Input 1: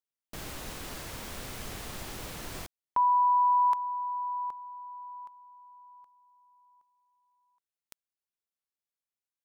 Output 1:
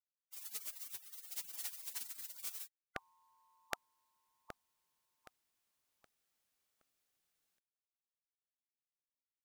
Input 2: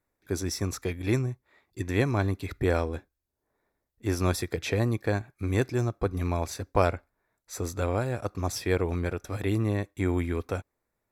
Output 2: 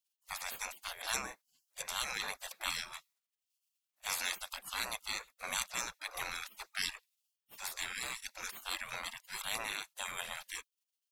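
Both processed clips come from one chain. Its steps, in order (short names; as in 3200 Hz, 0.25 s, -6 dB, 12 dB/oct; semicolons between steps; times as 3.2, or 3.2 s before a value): spectral gate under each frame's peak -30 dB weak; gain +10 dB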